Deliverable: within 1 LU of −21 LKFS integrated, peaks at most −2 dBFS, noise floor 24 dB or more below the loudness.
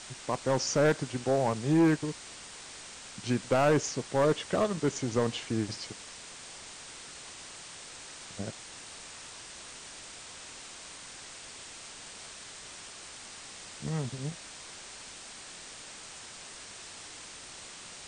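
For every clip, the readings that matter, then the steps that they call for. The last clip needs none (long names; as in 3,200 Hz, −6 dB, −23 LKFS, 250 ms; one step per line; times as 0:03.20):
share of clipped samples 0.5%; peaks flattened at −19.0 dBFS; background noise floor −47 dBFS; target noise floor −58 dBFS; integrated loudness −34.0 LKFS; sample peak −19.0 dBFS; target loudness −21.0 LKFS
→ clipped peaks rebuilt −19 dBFS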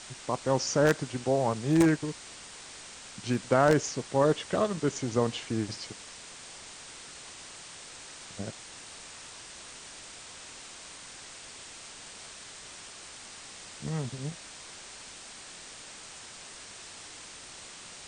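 share of clipped samples 0.0%; background noise floor −47 dBFS; target noise floor −53 dBFS
→ broadband denoise 6 dB, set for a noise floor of −47 dBFS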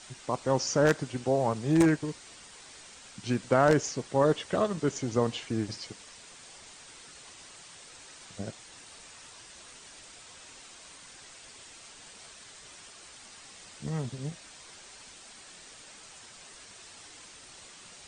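background noise floor −51 dBFS; target noise floor −53 dBFS
→ broadband denoise 6 dB, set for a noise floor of −51 dBFS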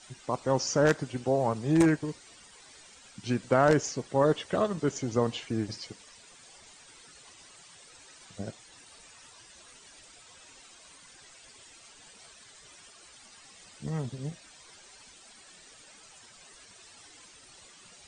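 background noise floor −54 dBFS; integrated loudness −28.5 LKFS; sample peak −10.0 dBFS; target loudness −21.0 LKFS
→ level +7.5 dB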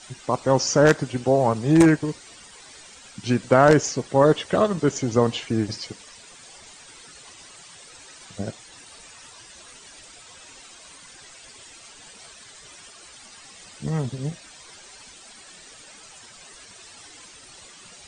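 integrated loudness −21.0 LKFS; sample peak −2.5 dBFS; background noise floor −47 dBFS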